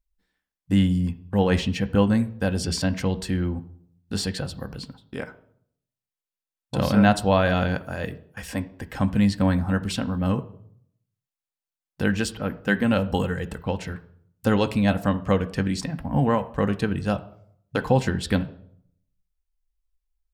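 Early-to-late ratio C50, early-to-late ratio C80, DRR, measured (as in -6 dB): 16.5 dB, 19.5 dB, 8.0 dB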